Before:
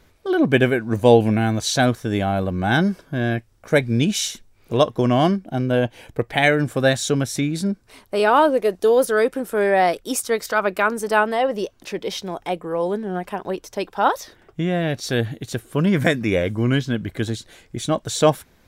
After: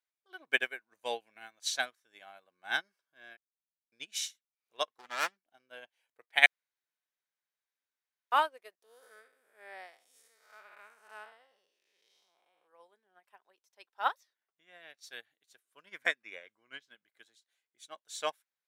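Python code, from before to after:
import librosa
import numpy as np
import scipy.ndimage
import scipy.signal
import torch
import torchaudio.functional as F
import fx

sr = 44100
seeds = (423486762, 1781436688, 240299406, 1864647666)

y = fx.self_delay(x, sr, depth_ms=0.62, at=(4.88, 5.37))
y = fx.spec_blur(y, sr, span_ms=243.0, at=(8.82, 12.67), fade=0.02)
y = fx.high_shelf(y, sr, hz=6900.0, db=-11.5, at=(16.02, 16.82))
y = fx.edit(y, sr, fx.silence(start_s=3.37, length_s=0.55),
    fx.room_tone_fill(start_s=6.46, length_s=1.86), tone=tone)
y = fx.dynamic_eq(y, sr, hz=2100.0, q=1.8, threshold_db=-36.0, ratio=4.0, max_db=3)
y = scipy.signal.sosfilt(scipy.signal.bessel(2, 1300.0, 'highpass', norm='mag', fs=sr, output='sos'), y)
y = fx.upward_expand(y, sr, threshold_db=-37.0, expansion=2.5)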